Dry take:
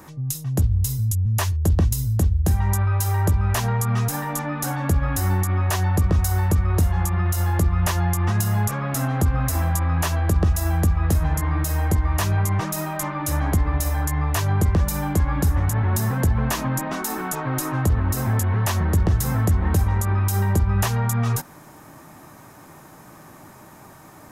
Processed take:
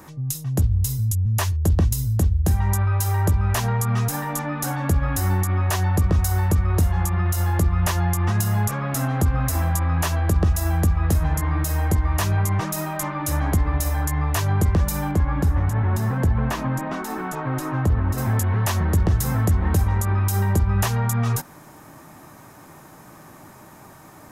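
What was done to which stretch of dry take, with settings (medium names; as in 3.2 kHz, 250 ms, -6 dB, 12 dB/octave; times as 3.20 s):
15.11–18.18 s: treble shelf 4.2 kHz -11.5 dB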